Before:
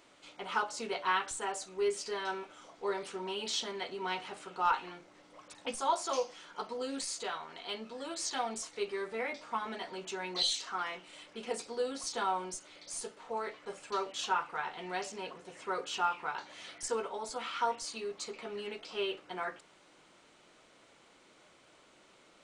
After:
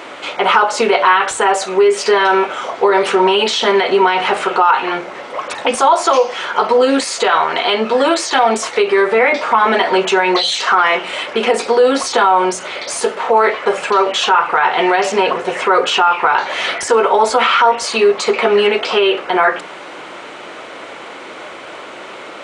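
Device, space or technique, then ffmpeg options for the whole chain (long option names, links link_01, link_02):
mastering chain: -af "highpass=60,equalizer=frequency=4500:width_type=o:width=0.77:gain=-1.5,bandreject=frequency=60:width_type=h:width=6,bandreject=frequency=120:width_type=h:width=6,bandreject=frequency=180:width_type=h:width=6,bandreject=frequency=240:width_type=h:width=6,bandreject=frequency=300:width_type=h:width=6,acompressor=threshold=-39dB:ratio=2,alimiter=level_in=33.5dB:limit=-1dB:release=50:level=0:latency=1,bass=frequency=250:gain=-11,treble=frequency=4000:gain=-13,volume=-1dB"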